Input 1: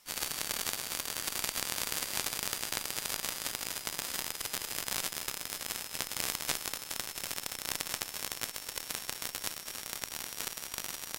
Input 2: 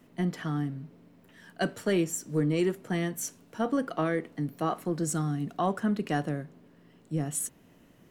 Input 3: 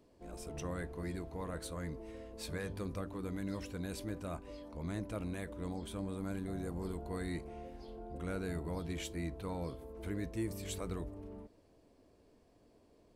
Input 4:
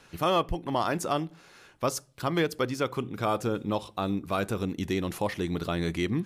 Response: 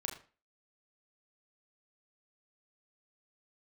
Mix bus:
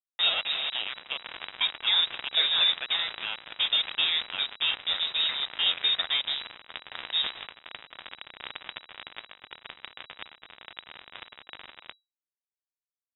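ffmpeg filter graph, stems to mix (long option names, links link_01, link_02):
-filter_complex "[0:a]equalizer=frequency=310:width=0.32:gain=8.5,adelay=750,volume=-2dB,asplit=2[link_01][link_02];[link_02]volume=-19.5dB[link_03];[1:a]volume=-1.5dB,asplit=2[link_04][link_05];[link_05]volume=-5dB[link_06];[2:a]asubboost=boost=2:cutoff=75,acompressor=threshold=-50dB:ratio=2.5,adelay=1450,volume=-12.5dB,asplit=3[link_07][link_08][link_09];[link_08]volume=-4dB[link_10];[link_09]volume=-12.5dB[link_11];[3:a]highpass=frequency=1300:poles=1,volume=-0.5dB,asplit=4[link_12][link_13][link_14][link_15];[link_13]volume=-13dB[link_16];[link_14]volume=-7.5dB[link_17];[link_15]apad=whole_len=526411[link_18];[link_01][link_18]sidechaincompress=threshold=-39dB:ratio=16:attack=10:release=107[link_19];[4:a]atrim=start_sample=2205[link_20];[link_06][link_10][link_16]amix=inputs=3:normalize=0[link_21];[link_21][link_20]afir=irnorm=-1:irlink=0[link_22];[link_03][link_11][link_17]amix=inputs=3:normalize=0,aecho=0:1:284|568|852|1136|1420:1|0.36|0.13|0.0467|0.0168[link_23];[link_19][link_04][link_07][link_12][link_22][link_23]amix=inputs=6:normalize=0,aeval=exprs='val(0)*gte(abs(val(0)),0.0473)':channel_layout=same,lowpass=frequency=3300:width_type=q:width=0.5098,lowpass=frequency=3300:width_type=q:width=0.6013,lowpass=frequency=3300:width_type=q:width=0.9,lowpass=frequency=3300:width_type=q:width=2.563,afreqshift=-3900"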